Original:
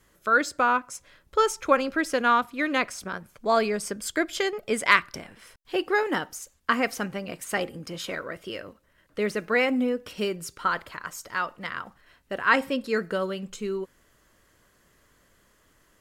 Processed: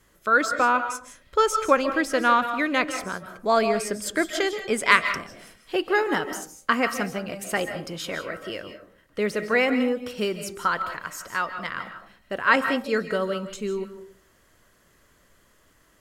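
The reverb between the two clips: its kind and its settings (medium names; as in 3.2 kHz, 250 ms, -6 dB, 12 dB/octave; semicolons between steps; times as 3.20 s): algorithmic reverb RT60 0.42 s, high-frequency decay 0.4×, pre-delay 115 ms, DRR 8.5 dB; trim +1.5 dB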